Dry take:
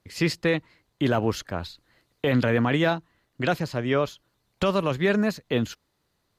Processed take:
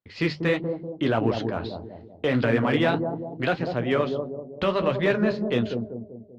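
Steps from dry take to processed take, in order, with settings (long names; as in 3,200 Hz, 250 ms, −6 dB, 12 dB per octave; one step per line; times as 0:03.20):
noise gate with hold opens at −56 dBFS
low-pass filter 4,200 Hz 24 dB per octave
low-shelf EQ 92 Hz −6 dB
mains-hum notches 50/100/150/200 Hz
in parallel at −3.5 dB: asymmetric clip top −18.5 dBFS, bottom −15 dBFS
on the sum: flanger 1.6 Hz, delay 7.4 ms, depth 7.7 ms, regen −45%
bucket-brigade delay 193 ms, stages 1,024, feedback 48%, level −5 dB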